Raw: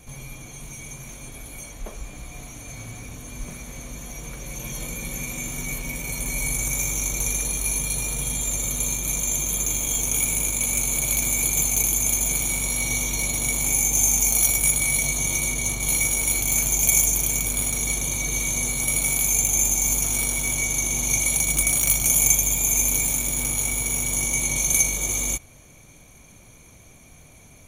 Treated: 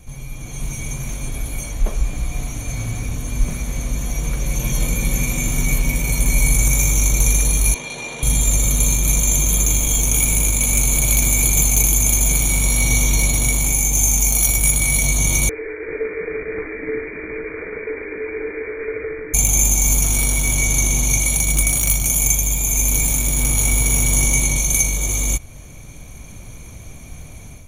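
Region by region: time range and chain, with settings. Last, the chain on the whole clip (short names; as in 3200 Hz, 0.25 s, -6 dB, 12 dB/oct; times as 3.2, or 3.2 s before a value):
7.74–8.23 BPF 360–3500 Hz + notch 1300 Hz, Q 16
15.49–19.34 rippled Chebyshev high-pass 290 Hz, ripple 3 dB + inverted band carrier 2700 Hz
whole clip: low shelf 130 Hz +11 dB; AGC gain up to 8.5 dB; gain -1 dB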